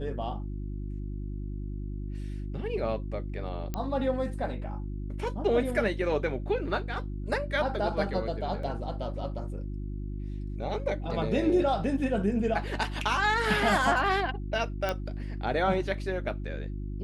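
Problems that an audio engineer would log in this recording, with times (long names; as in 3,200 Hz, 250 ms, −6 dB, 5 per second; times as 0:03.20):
mains hum 50 Hz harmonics 7 −35 dBFS
0:03.74: click −18 dBFS
0:08.63: drop-out 3.9 ms
0:14.89: click −15 dBFS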